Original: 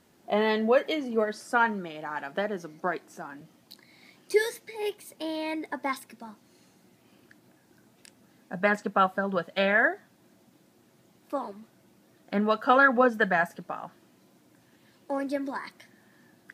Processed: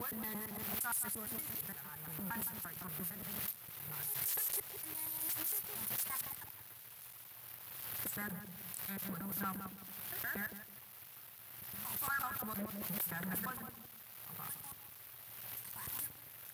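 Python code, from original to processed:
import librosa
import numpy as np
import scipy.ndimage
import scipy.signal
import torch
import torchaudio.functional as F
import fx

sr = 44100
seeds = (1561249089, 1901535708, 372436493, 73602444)

p1 = fx.block_reorder(x, sr, ms=115.0, group=7)
p2 = scipy.signal.sosfilt(scipy.signal.cheby2(4, 50, [250.0, 6200.0], 'bandstop', fs=sr, output='sos'), p1)
p3 = fx.low_shelf(p2, sr, hz=470.0, db=-4.5)
p4 = fx.leveller(p3, sr, passes=2)
p5 = fx.fold_sine(p4, sr, drive_db=15, ceiling_db=-37.5)
p6 = p4 + (p5 * 10.0 ** (-8.5 / 20.0))
p7 = fx.weighting(p6, sr, curve='A')
p8 = fx.echo_filtered(p7, sr, ms=164, feedback_pct=28, hz=1000.0, wet_db=-7)
p9 = fx.pre_swell(p8, sr, db_per_s=28.0)
y = p9 * 10.0 ** (13.5 / 20.0)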